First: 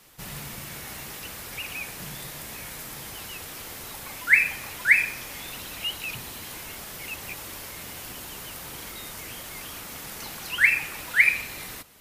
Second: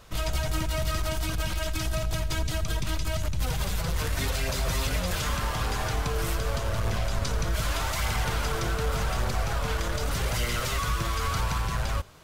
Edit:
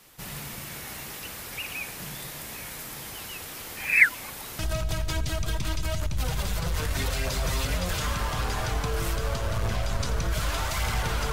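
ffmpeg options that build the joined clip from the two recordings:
-filter_complex "[0:a]apad=whole_dur=11.32,atrim=end=11.32,asplit=2[a][b];[a]atrim=end=3.772[c];[b]atrim=start=3.768:end=4.592,asetpts=PTS-STARTPTS,areverse[d];[1:a]atrim=start=1.808:end=8.54[e];[c][d]acrossfade=d=0.004:c1=hsin:c2=hsin[f];[f][e]acrossfade=d=0.004:c1=hsin:c2=hsin"

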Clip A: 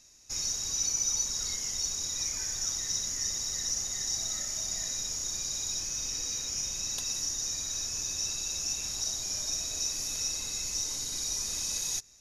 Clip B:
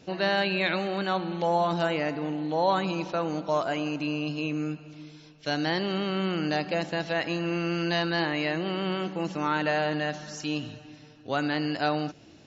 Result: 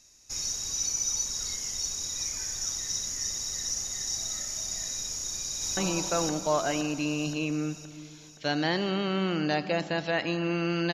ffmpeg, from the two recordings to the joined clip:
-filter_complex "[0:a]apad=whole_dur=10.93,atrim=end=10.93,atrim=end=5.772[a];[1:a]atrim=start=2.788:end=7.95[b];[a][b]acrossfade=d=0.004:c1=hsin:c2=hsin,asplit=2[c][d];[d]afade=t=in:st=5.09:d=0.01,afade=t=out:st=5.77:d=0.01,aecho=0:1:520|1040|1560|2080|2600|3120|3640|4160:1|0.55|0.3025|0.166375|0.0915063|0.0503284|0.0276806|0.0152244[e];[c][e]amix=inputs=2:normalize=0"

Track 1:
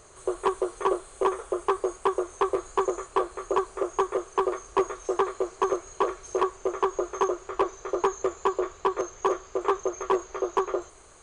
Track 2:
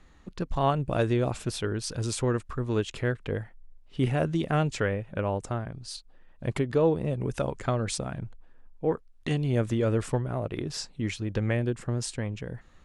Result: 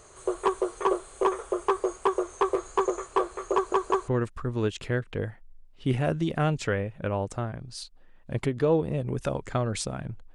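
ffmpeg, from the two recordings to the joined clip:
-filter_complex "[0:a]apad=whole_dur=10.34,atrim=end=10.34,asplit=3[a][b][c];[a]atrim=end=3.722[d];[b]atrim=start=3.538:end=3.722[e];[c]atrim=start=3.538:end=3.722[f];[1:a]atrim=start=2.208:end=8.47[g];[d][e]acrossfade=d=0.004:c1=hsin:c2=hsin[h];[h][f]acrossfade=d=0.004:c1=hsin:c2=hsin[i];[i][g]acrossfade=d=0.004:c1=hsin:c2=hsin"

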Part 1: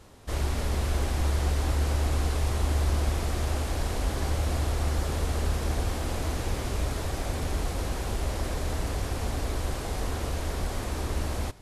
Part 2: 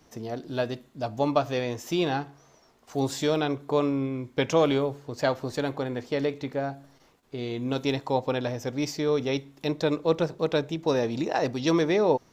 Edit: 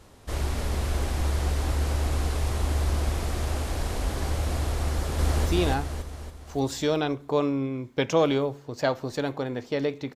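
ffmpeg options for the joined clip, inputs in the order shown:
-filter_complex "[0:a]apad=whole_dur=10.15,atrim=end=10.15,atrim=end=5.462[a];[1:a]atrim=start=1.858:end=6.55[b];[a][b]acrossfade=d=0.004:c1=hsin:c2=hsin,asplit=2[c][d];[d]afade=t=in:st=4.9:d=0.01,afade=t=out:st=5.46:d=0.01,aecho=0:1:280|560|840|1120|1400|1680|1960:0.944061|0.47203|0.236015|0.118008|0.0590038|0.0295019|0.014751[e];[c][e]amix=inputs=2:normalize=0"

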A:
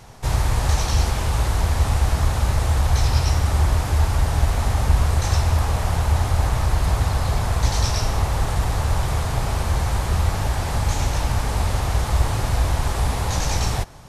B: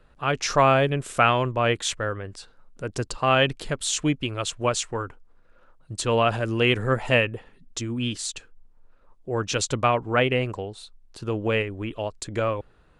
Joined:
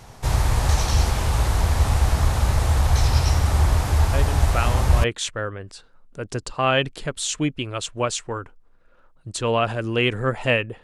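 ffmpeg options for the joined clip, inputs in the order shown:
-filter_complex "[1:a]asplit=2[a][b];[0:a]apad=whole_dur=10.83,atrim=end=10.83,atrim=end=5.042[c];[b]atrim=start=1.678:end=7.47[d];[a]atrim=start=0.77:end=1.68,asetpts=PTS-STARTPTS,volume=-7dB,afade=t=in:d=0.004:c=hsin,afade=t=out:st=0.906:d=0.004:c=hsin,adelay=182133S[e];[c][d]acrossfade=d=0.004:c1=hsin:c2=hsin[f];[f][e]amix=inputs=2:normalize=0"

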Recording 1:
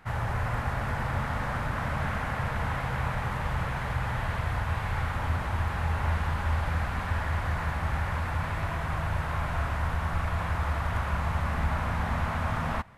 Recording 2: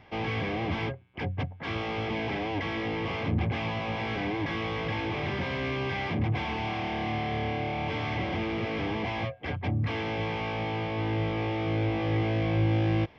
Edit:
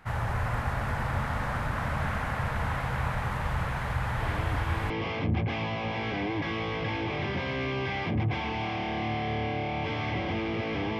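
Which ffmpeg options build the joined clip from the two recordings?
-filter_complex "[1:a]asplit=2[a][b];[0:a]apad=whole_dur=10.99,atrim=end=10.99,atrim=end=4.902[c];[b]atrim=start=2.938:end=9.03[d];[a]atrim=start=2.24:end=2.94,asetpts=PTS-STARTPTS,volume=-7.5dB,afade=t=in:d=0.004:c=hsin,afade=t=out:st=0.696:d=0.004:c=hsin,adelay=4200[e];[c][d]acrossfade=d=0.004:c1=hsin:c2=hsin[f];[f][e]amix=inputs=2:normalize=0"

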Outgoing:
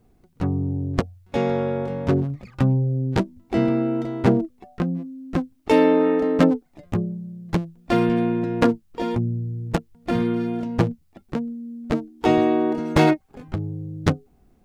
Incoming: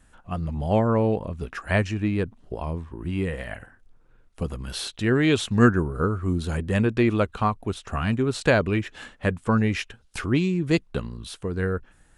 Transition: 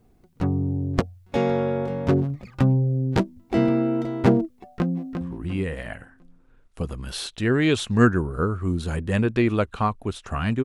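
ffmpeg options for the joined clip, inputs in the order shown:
-filter_complex "[0:a]apad=whole_dur=10.64,atrim=end=10.64,atrim=end=5.212[a];[1:a]atrim=start=2.818:end=8.25[b];[a][b]acrossfade=d=0.004:c1=hsin:c2=hsin,asplit=2[c][d];[d]afade=t=in:st=4.52:d=0.01,afade=t=out:st=5.21:d=0.01,aecho=0:1:350|700|1050|1400:0.446684|0.156339|0.0547187|0.0191516[e];[c][e]amix=inputs=2:normalize=0"

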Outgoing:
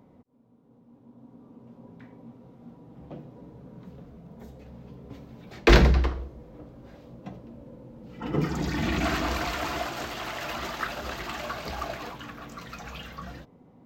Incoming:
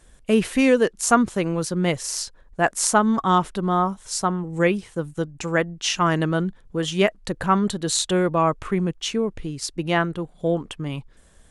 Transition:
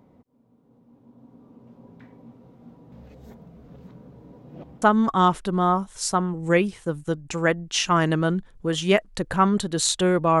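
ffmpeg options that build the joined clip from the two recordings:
-filter_complex "[0:a]apad=whole_dur=10.4,atrim=end=10.4,asplit=2[a][b];[a]atrim=end=2.922[c];[b]atrim=start=2.918:end=4.822,asetpts=PTS-STARTPTS,areverse[d];[1:a]atrim=start=2.918:end=8.5[e];[c][d]acrossfade=d=0.004:c1=hsin:c2=hsin[f];[f][e]acrossfade=d=0.004:c1=hsin:c2=hsin"

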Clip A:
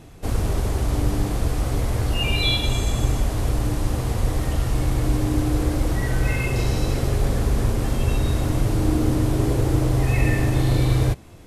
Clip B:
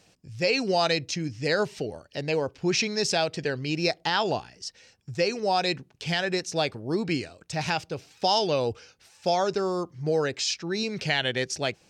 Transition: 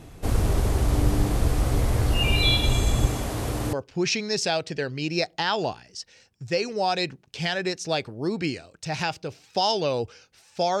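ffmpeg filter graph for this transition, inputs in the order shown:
-filter_complex "[0:a]asettb=1/sr,asplit=3[a][b][c];[a]atrim=end=3.064[d];[b]atrim=start=3.06:end=3.73,asetpts=PTS-STARTPTS,afade=t=in:d=0.004:c=qsin,afade=t=out:st=0.666:d=0.004:c=qsin,highpass=f=160:p=1[e];[c]atrim=start=3.726[f];[d][e]acrossfade=d=0.004:c1=hsin:c2=qsin[g];[g][f]acrossfade=d=0.004:c1=qsin:c2=hsin,apad=whole_dur=10.8,atrim=end=10.8,atrim=end=3.732[h];[1:a]atrim=start=2.398:end=9.47[i];[h][i]acrossfade=d=0.004:c1=hsin:c2=hsin"

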